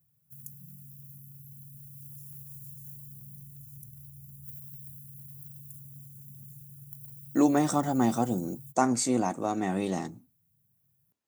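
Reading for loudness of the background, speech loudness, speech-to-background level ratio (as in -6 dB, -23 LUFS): -45.0 LUFS, -28.0 LUFS, 17.0 dB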